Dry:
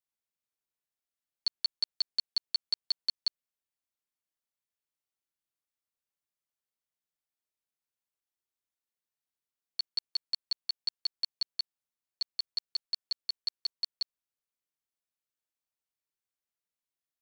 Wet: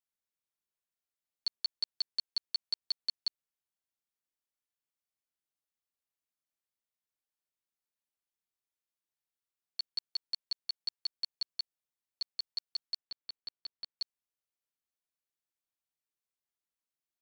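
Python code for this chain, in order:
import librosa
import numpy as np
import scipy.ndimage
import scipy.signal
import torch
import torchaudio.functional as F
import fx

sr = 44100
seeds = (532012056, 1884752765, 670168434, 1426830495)

y = fx.air_absorb(x, sr, metres=190.0, at=(12.97, 13.99))
y = y * 10.0 ** (-3.5 / 20.0)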